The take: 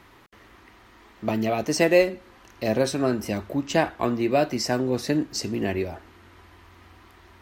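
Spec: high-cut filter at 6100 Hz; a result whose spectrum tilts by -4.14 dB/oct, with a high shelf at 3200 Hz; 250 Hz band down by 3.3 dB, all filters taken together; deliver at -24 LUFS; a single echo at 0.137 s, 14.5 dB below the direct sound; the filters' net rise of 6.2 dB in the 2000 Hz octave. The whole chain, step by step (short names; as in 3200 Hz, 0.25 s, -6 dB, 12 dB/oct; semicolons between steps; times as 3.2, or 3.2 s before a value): LPF 6100 Hz; bell 250 Hz -4.5 dB; bell 2000 Hz +6 dB; high shelf 3200 Hz +4.5 dB; echo 0.137 s -14.5 dB; gain +0.5 dB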